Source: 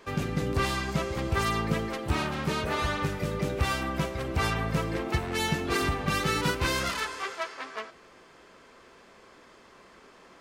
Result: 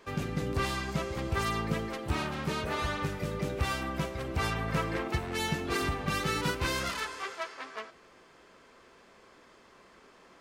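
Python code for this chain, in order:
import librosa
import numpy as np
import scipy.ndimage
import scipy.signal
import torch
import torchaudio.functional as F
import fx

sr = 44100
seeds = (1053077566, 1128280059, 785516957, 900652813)

y = fx.peak_eq(x, sr, hz=1500.0, db=5.5, octaves=2.2, at=(4.68, 5.08))
y = y * 10.0 ** (-3.5 / 20.0)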